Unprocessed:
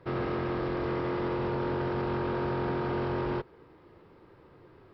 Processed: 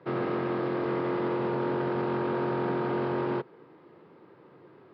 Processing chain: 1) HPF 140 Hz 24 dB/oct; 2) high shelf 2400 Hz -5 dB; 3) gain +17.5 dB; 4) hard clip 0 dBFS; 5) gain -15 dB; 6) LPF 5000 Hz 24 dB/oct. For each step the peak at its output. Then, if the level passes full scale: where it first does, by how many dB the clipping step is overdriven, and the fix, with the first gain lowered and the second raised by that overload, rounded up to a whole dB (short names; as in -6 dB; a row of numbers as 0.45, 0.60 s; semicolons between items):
-20.0, -20.5, -3.0, -3.0, -18.0, -18.0 dBFS; no overload